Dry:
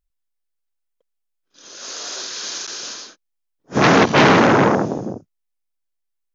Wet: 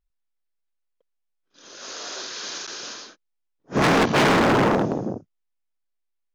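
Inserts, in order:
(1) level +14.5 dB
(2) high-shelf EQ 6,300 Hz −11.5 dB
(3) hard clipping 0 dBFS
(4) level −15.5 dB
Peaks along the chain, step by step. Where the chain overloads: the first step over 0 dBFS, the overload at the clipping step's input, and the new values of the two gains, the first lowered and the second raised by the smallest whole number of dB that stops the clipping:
+8.5, +8.0, 0.0, −15.5 dBFS
step 1, 8.0 dB
step 1 +6.5 dB, step 4 −7.5 dB

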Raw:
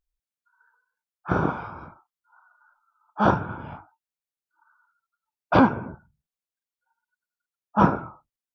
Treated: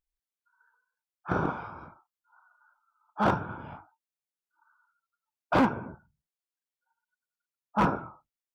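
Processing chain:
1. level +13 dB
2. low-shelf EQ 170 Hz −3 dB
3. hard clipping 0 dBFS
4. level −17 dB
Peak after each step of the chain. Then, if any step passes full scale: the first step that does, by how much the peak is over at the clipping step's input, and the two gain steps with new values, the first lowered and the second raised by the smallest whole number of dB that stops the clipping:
+9.5, +9.0, 0.0, −17.0 dBFS
step 1, 9.0 dB
step 1 +4 dB, step 4 −8 dB

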